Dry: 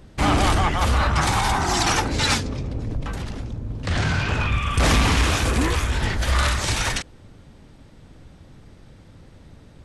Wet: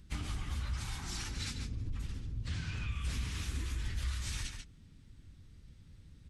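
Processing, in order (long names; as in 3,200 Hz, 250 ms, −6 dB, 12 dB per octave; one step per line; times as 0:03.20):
time stretch by phase vocoder 0.64×
slap from a distant wall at 24 metres, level −9 dB
downward compressor, threshold −27 dBFS, peak gain reduction 10.5 dB
guitar amp tone stack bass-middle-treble 6-0-2
level +7.5 dB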